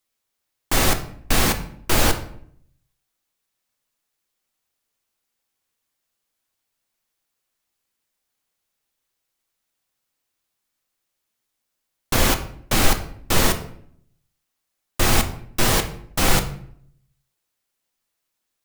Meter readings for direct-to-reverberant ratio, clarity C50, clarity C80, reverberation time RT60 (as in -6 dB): 6.0 dB, 12.0 dB, 15.0 dB, 0.60 s